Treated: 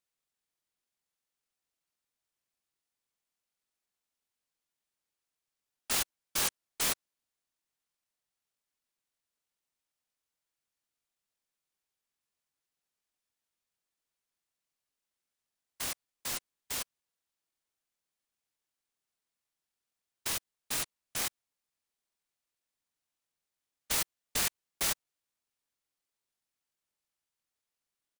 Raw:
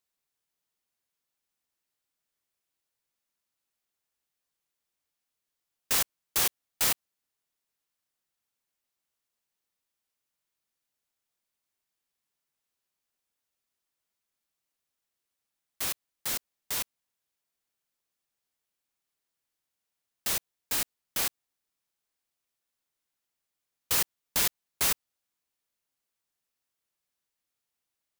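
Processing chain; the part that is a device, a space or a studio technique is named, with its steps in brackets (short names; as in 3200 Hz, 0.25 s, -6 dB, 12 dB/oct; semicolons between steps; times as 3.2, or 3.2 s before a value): octave pedal (harmoniser -12 st -1 dB); gain -6.5 dB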